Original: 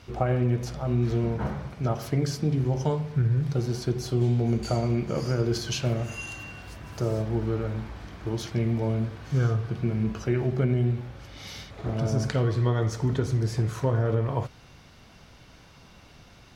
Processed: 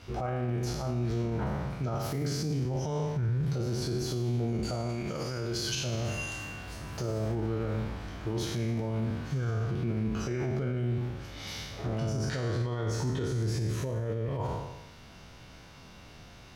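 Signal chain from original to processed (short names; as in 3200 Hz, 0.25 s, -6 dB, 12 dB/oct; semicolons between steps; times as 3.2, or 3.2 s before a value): spectral trails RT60 1.04 s; limiter -22 dBFS, peak gain reduction 11 dB; 4.89–5.75 tilt shelf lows -3.5 dB; 13.58–14.39 spectral gain 660–1600 Hz -7 dB; gain -1.5 dB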